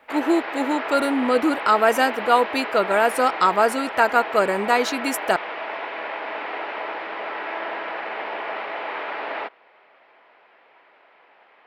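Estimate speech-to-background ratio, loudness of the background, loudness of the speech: 9.0 dB, −29.5 LKFS, −20.5 LKFS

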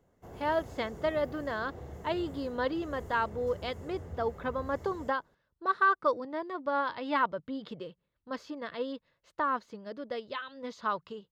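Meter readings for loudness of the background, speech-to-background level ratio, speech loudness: −46.5 LKFS, 13.0 dB, −33.5 LKFS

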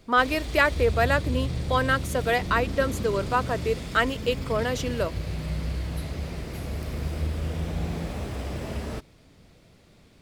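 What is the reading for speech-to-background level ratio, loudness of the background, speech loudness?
6.5 dB, −32.0 LKFS, −25.5 LKFS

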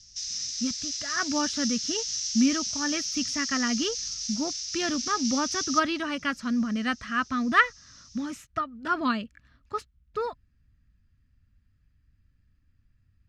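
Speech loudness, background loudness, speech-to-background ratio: −29.0 LKFS, −30.0 LKFS, 1.0 dB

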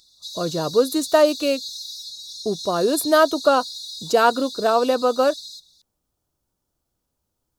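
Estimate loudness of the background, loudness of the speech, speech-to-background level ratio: −32.5 LKFS, −20.0 LKFS, 12.5 dB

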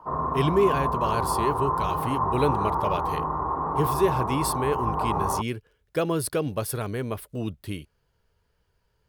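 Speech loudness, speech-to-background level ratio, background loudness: −28.5 LKFS, −1.5 dB, −27.0 LKFS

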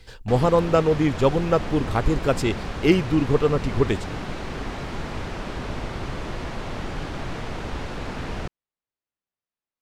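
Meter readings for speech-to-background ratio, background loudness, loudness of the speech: 10.5 dB, −32.5 LKFS, −22.0 LKFS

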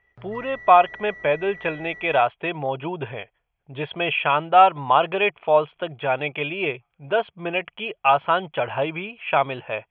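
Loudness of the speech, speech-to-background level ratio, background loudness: −22.0 LKFS, 18.0 dB, −40.0 LKFS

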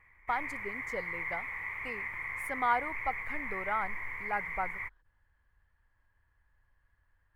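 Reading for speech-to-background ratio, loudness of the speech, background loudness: 0.5 dB, −37.0 LKFS, −37.5 LKFS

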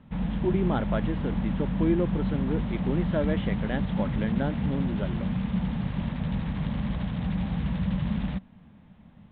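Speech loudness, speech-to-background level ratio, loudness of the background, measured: −31.0 LKFS, −1.5 dB, −29.5 LKFS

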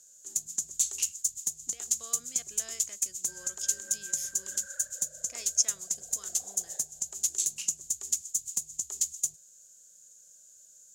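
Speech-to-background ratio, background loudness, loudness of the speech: −3.0 dB, −31.0 LKFS, −34.0 LKFS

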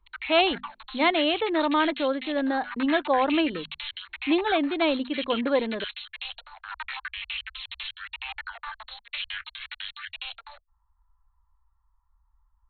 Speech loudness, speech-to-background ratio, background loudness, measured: −25.0 LKFS, 11.0 dB, −36.0 LKFS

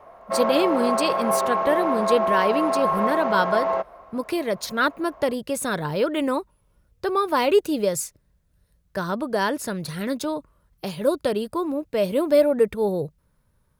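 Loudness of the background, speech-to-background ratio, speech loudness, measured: −23.5 LKFS, −1.0 dB, −24.5 LKFS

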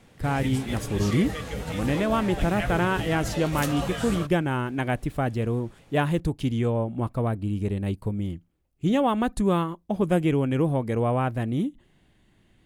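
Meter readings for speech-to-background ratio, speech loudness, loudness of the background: 6.5 dB, −26.0 LKFS, −32.5 LKFS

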